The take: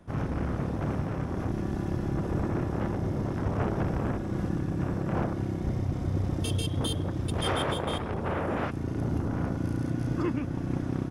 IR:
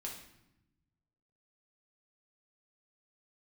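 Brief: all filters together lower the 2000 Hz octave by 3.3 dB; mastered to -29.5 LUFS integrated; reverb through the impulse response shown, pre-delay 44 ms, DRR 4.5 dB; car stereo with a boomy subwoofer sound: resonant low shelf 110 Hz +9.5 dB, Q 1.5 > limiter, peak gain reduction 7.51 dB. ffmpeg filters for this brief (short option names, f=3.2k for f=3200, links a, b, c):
-filter_complex "[0:a]equalizer=f=2k:t=o:g=-4.5,asplit=2[a][b];[1:a]atrim=start_sample=2205,adelay=44[c];[b][c]afir=irnorm=-1:irlink=0,volume=-3dB[d];[a][d]amix=inputs=2:normalize=0,lowshelf=f=110:t=q:w=1.5:g=9.5,volume=-3dB,alimiter=limit=-20dB:level=0:latency=1"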